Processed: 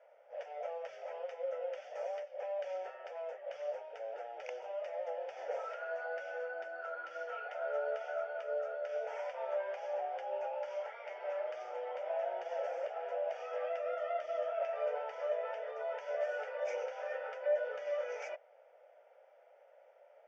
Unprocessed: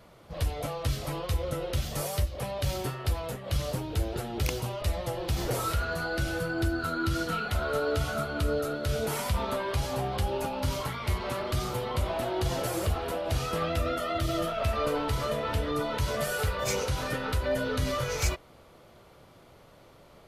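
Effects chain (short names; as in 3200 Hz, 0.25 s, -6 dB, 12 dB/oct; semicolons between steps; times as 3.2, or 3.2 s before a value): Chebyshev band-pass 530–6000 Hz, order 4; tilt -4.5 dB/oct; fixed phaser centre 1100 Hz, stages 6; gain -4.5 dB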